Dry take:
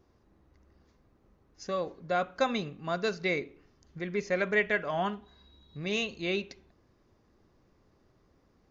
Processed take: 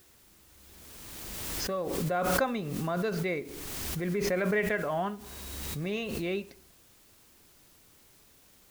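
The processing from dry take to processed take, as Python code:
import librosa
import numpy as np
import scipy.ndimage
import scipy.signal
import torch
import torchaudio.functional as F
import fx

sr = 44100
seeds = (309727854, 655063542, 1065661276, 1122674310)

p1 = fx.lowpass(x, sr, hz=1700.0, slope=6)
p2 = fx.quant_dither(p1, sr, seeds[0], bits=8, dither='triangular')
p3 = p1 + (p2 * librosa.db_to_amplitude(-9.0))
p4 = fx.pre_swell(p3, sr, db_per_s=22.0)
y = p4 * librosa.db_to_amplitude(-3.5)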